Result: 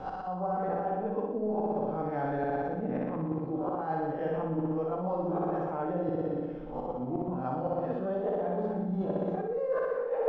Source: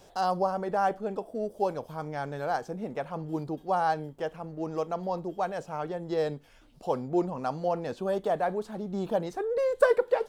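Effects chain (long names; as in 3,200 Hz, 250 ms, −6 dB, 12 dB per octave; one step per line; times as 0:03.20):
peak hold with a rise ahead of every peak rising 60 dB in 0.39 s
low-shelf EQ 70 Hz −11 dB
on a send at −6 dB: convolution reverb, pre-delay 4 ms
on the sum: volume swells 762 ms
low-pass filter 1,700 Hz 12 dB per octave
low-shelf EQ 330 Hz +9.5 dB
flutter between parallel walls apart 10.5 metres, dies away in 1.4 s
reversed playback
downward compressor 12 to 1, threshold −34 dBFS, peak gain reduction 18.5 dB
reversed playback
level +6.5 dB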